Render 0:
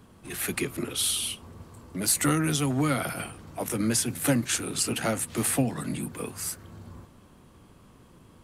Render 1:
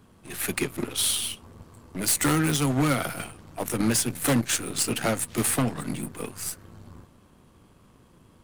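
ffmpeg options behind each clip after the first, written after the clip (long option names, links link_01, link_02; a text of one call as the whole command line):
ffmpeg -i in.wav -af "aeval=exprs='0.316*sin(PI/2*2.82*val(0)/0.316)':channel_layout=same,aeval=exprs='0.316*(cos(1*acos(clip(val(0)/0.316,-1,1)))-cos(1*PI/2))+0.0794*(cos(3*acos(clip(val(0)/0.316,-1,1)))-cos(3*PI/2))+0.0126*(cos(5*acos(clip(val(0)/0.316,-1,1)))-cos(5*PI/2))+0.0141*(cos(8*acos(clip(val(0)/0.316,-1,1)))-cos(8*PI/2))':channel_layout=same,volume=-8dB" out.wav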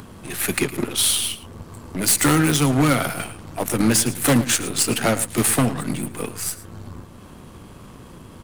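ffmpeg -i in.wav -filter_complex "[0:a]asplit=2[link_01][link_02];[link_02]acompressor=mode=upward:threshold=-30dB:ratio=2.5,volume=-0.5dB[link_03];[link_01][link_03]amix=inputs=2:normalize=0,asplit=2[link_04][link_05];[link_05]adelay=110.8,volume=-15dB,highshelf=frequency=4000:gain=-2.49[link_06];[link_04][link_06]amix=inputs=2:normalize=0" out.wav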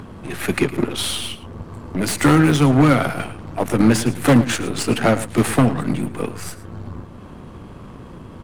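ffmpeg -i in.wav -af "lowpass=frequency=1800:poles=1,volume=4.5dB" out.wav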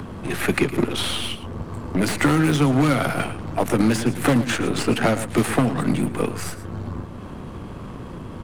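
ffmpeg -i in.wav -filter_complex "[0:a]acrossover=split=140|3100[link_01][link_02][link_03];[link_01]acompressor=threshold=-31dB:ratio=4[link_04];[link_02]acompressor=threshold=-20dB:ratio=4[link_05];[link_03]acompressor=threshold=-35dB:ratio=4[link_06];[link_04][link_05][link_06]amix=inputs=3:normalize=0,volume=3dB" out.wav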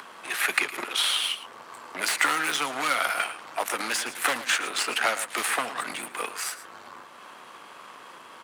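ffmpeg -i in.wav -af "highpass=1100,volume=2dB" out.wav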